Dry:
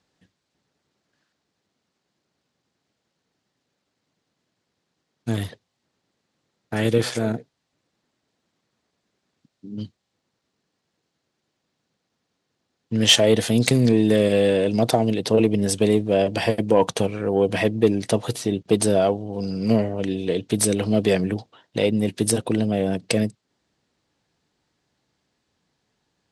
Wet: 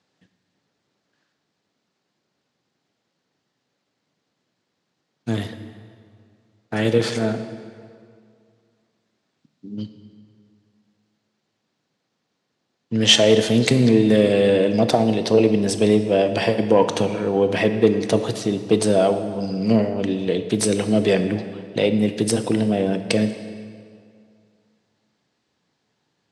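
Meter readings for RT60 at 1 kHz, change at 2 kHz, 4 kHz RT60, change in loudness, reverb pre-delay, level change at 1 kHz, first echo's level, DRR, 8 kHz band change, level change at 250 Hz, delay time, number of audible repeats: 2.2 s, +2.0 dB, 1.6 s, +2.0 dB, 17 ms, +2.0 dB, no echo audible, 8.5 dB, −1.5 dB, +2.0 dB, no echo audible, no echo audible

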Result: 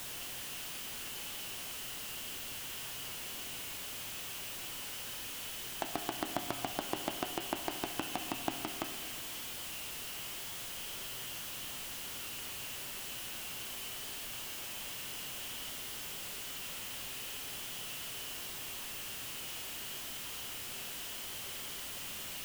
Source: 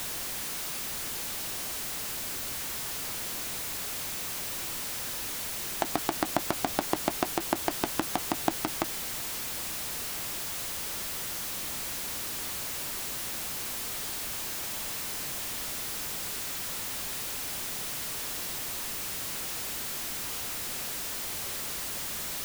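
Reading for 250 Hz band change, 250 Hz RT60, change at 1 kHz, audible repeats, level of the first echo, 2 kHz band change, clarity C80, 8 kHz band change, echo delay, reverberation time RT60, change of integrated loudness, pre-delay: −8.0 dB, 1.9 s, −7.5 dB, no echo audible, no echo audible, −5.5 dB, 5.5 dB, −8.5 dB, no echo audible, 1.8 s, −7.5 dB, 7 ms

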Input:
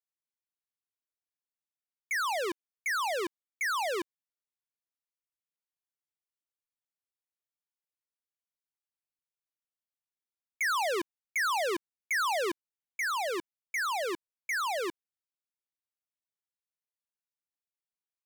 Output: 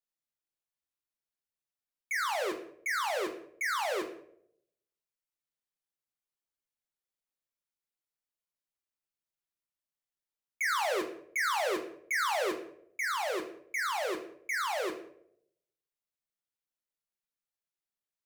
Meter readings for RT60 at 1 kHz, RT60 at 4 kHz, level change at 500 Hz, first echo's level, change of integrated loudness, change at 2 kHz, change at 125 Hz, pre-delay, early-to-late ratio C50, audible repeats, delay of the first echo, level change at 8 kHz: 0.60 s, 0.40 s, 0.0 dB, no echo audible, −1.0 dB, −1.0 dB, can't be measured, 4 ms, 9.0 dB, no echo audible, no echo audible, −1.5 dB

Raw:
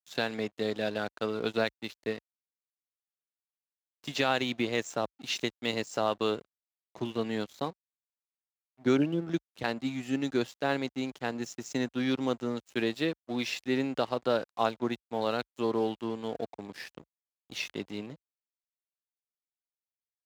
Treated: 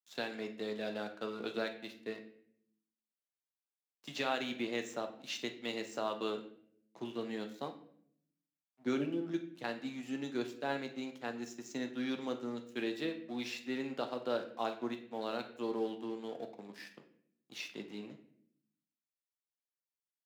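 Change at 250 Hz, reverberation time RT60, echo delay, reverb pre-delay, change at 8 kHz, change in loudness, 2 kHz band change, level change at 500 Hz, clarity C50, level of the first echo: −7.0 dB, 0.65 s, no echo audible, 8 ms, −7.5 dB, −7.5 dB, −7.5 dB, −7.5 dB, 11.0 dB, no echo audible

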